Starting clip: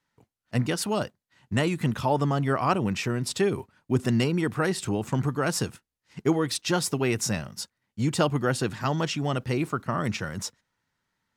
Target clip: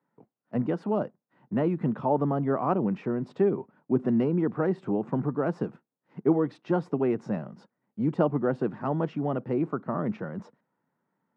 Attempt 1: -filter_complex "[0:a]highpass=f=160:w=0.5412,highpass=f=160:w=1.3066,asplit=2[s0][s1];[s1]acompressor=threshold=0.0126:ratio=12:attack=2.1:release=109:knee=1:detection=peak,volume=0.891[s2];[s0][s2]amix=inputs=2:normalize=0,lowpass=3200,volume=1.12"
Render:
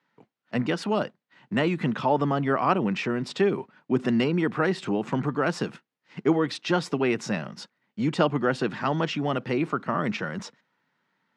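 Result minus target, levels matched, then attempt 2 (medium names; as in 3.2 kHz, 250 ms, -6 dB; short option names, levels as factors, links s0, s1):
4 kHz band +19.5 dB; compression: peak gain reduction -10.5 dB
-filter_complex "[0:a]highpass=f=160:w=0.5412,highpass=f=160:w=1.3066,asplit=2[s0][s1];[s1]acompressor=threshold=0.00335:ratio=12:attack=2.1:release=109:knee=1:detection=peak,volume=0.891[s2];[s0][s2]amix=inputs=2:normalize=0,lowpass=850,volume=1.12"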